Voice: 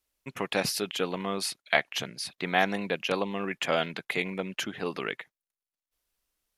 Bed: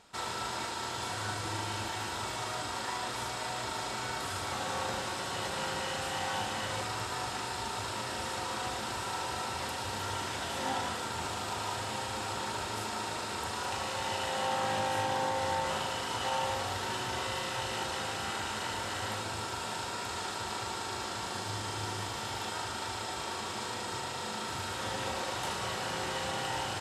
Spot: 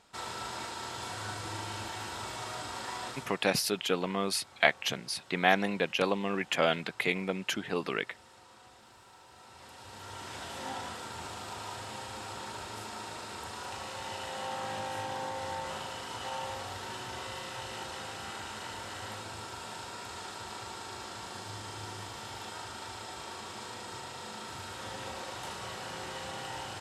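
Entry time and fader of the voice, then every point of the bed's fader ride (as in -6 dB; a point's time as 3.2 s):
2.90 s, 0.0 dB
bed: 3.08 s -3 dB
3.49 s -20.5 dB
9.27 s -20.5 dB
10.37 s -5.5 dB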